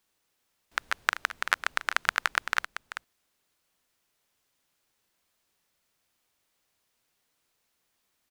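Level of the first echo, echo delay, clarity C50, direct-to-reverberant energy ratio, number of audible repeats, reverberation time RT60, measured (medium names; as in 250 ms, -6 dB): -11.5 dB, 387 ms, no reverb, no reverb, 1, no reverb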